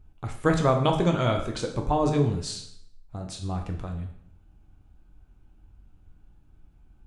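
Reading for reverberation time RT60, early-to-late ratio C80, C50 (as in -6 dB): 0.70 s, 11.0 dB, 8.0 dB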